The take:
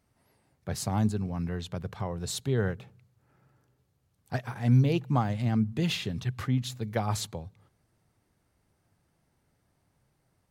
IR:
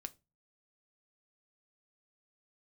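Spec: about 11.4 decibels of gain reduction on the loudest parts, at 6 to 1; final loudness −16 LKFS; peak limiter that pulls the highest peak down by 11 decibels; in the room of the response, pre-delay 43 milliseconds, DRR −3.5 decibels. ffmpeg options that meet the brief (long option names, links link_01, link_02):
-filter_complex "[0:a]acompressor=threshold=-29dB:ratio=6,alimiter=level_in=4dB:limit=-24dB:level=0:latency=1,volume=-4dB,asplit=2[link_01][link_02];[1:a]atrim=start_sample=2205,adelay=43[link_03];[link_02][link_03]afir=irnorm=-1:irlink=0,volume=7.5dB[link_04];[link_01][link_04]amix=inputs=2:normalize=0,volume=17dB"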